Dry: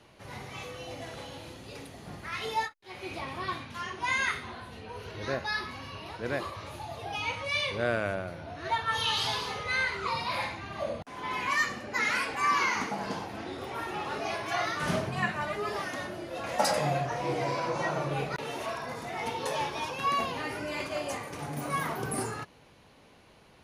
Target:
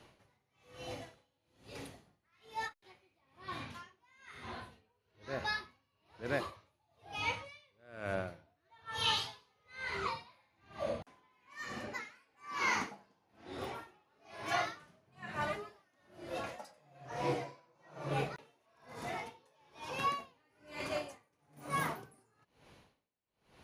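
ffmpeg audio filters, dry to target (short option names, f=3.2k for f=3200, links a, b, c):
-af "aeval=exprs='val(0)*pow(10,-37*(0.5-0.5*cos(2*PI*1.1*n/s))/20)':c=same,volume=-2dB"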